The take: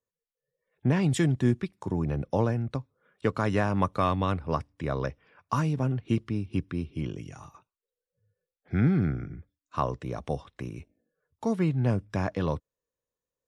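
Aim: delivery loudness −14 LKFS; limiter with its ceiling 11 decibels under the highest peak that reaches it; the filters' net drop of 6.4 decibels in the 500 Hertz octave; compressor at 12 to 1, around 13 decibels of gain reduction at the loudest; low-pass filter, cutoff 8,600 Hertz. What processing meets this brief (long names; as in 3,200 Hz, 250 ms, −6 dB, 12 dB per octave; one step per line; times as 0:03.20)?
low-pass filter 8,600 Hz
parametric band 500 Hz −8.5 dB
downward compressor 12 to 1, threshold −34 dBFS
level +28 dB
brickwall limiter −3 dBFS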